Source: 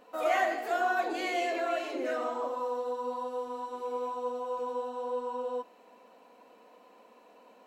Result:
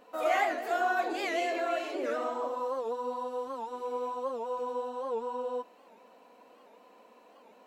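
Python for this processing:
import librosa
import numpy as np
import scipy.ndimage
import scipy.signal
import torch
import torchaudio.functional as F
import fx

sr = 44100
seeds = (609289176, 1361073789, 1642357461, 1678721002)

y = fx.record_warp(x, sr, rpm=78.0, depth_cents=160.0)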